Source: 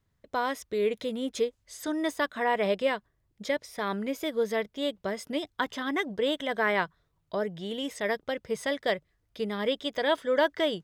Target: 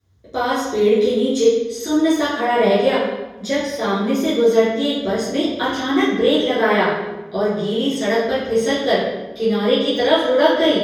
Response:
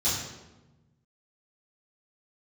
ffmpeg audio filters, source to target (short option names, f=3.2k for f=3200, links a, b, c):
-filter_complex "[0:a]equalizer=f=410:t=o:w=0.39:g=5.5[a];[1:a]atrim=start_sample=2205,asetrate=41895,aresample=44100[b];[a][b]afir=irnorm=-1:irlink=0,volume=-1dB"